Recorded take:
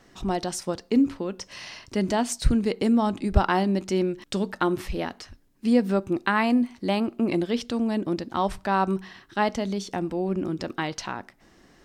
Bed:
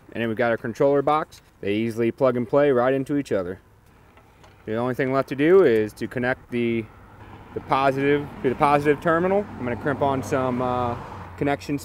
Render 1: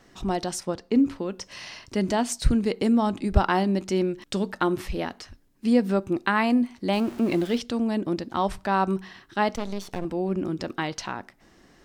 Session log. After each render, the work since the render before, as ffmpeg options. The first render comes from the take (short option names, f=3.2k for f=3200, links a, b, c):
-filter_complex "[0:a]asettb=1/sr,asplit=3[a][b][c];[a]atrim=end=0.604[d];[b]atrim=start=0.6:end=1.06,asetpts=PTS-STARTPTS,afade=t=in:d=0.004:c=qsin,afade=t=out:st=0.456:d=0.004:c=qsin,highshelf=f=4.7k:g=-8[e];[c]atrim=start=1.056[f];[d][e]acrossfade=d=0.004:c1=hsin:c2=qsin[g];[g][f]acrossfade=d=0.004:c1=qsin:c2=hsin,asettb=1/sr,asplit=3[h][i][j];[h]atrim=end=6.934[k];[i]atrim=start=6.93:end=7.58,asetpts=PTS-STARTPTS,afade=t=in:d=0.004:c=qsin,afade=t=out:st=0.646:d=0.004:c=qsin,aeval=exprs='val(0)+0.5*0.015*sgn(val(0))':c=same[l];[j]atrim=start=7.576[m];[k][l]acrossfade=d=0.004:c1=hsin:c2=qsin[n];[n][m]acrossfade=d=0.004:c1=qsin:c2=hsin,asettb=1/sr,asplit=3[o][p][q];[o]atrim=end=9.554[r];[p]atrim=start=9.55:end=10.05,asetpts=PTS-STARTPTS,afade=t=in:d=0.004:c=qsin,afade=t=out:st=0.496:d=0.004:c=qsin,aeval=exprs='max(val(0),0)':c=same[s];[q]atrim=start=10.046[t];[r][s]acrossfade=d=0.004:c1=hsin:c2=qsin[u];[u][t]acrossfade=d=0.004:c1=qsin:c2=hsin"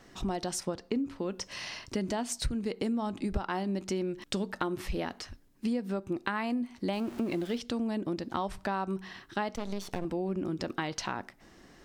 -af "acompressor=threshold=-29dB:ratio=6"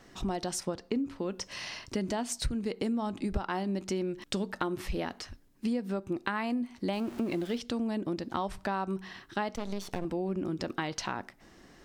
-af anull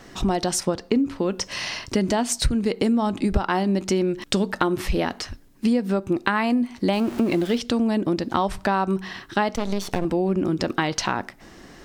-af "volume=10.5dB"